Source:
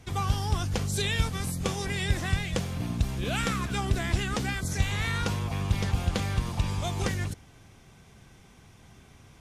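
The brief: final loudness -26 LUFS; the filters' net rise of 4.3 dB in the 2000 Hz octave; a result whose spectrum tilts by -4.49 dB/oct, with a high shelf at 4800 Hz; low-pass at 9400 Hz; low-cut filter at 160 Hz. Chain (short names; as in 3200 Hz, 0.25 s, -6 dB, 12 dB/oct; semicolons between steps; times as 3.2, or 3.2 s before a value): HPF 160 Hz; LPF 9400 Hz; bell 2000 Hz +6.5 dB; high shelf 4800 Hz -8 dB; gain +5 dB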